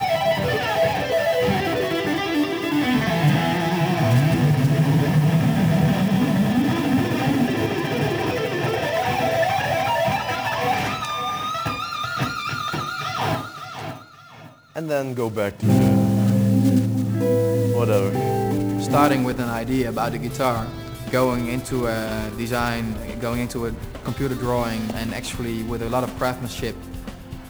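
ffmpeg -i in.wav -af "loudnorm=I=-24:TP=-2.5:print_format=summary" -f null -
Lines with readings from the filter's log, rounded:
Input Integrated:    -21.9 LUFS
Input True Peak:      -1.7 dBTP
Input LRA:             8.0 LU
Input Threshold:     -32.2 LUFS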